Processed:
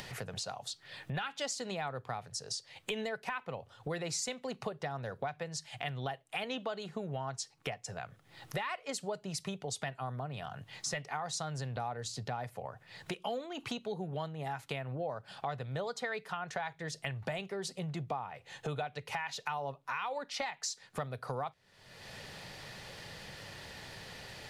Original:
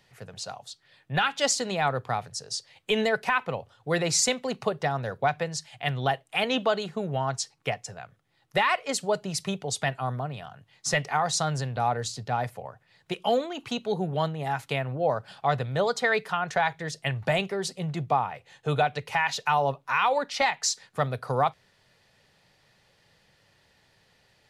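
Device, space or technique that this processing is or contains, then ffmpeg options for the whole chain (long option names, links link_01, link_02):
upward and downward compression: -af "acompressor=mode=upward:threshold=-30dB:ratio=2.5,acompressor=threshold=-34dB:ratio=4,volume=-2dB"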